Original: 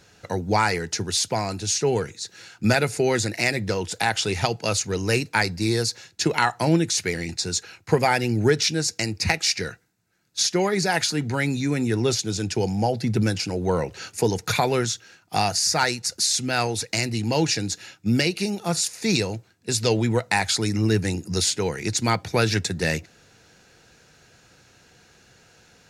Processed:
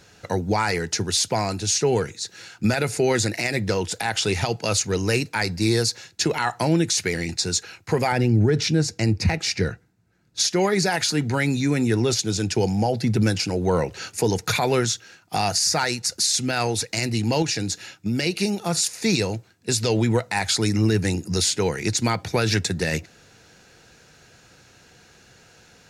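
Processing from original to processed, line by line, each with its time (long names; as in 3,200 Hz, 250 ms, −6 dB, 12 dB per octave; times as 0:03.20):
0:08.12–0:10.40: spectral tilt −2.5 dB per octave
0:17.42–0:18.23: downward compressor 3 to 1, threshold −24 dBFS
whole clip: brickwall limiter −13.5 dBFS; level +2.5 dB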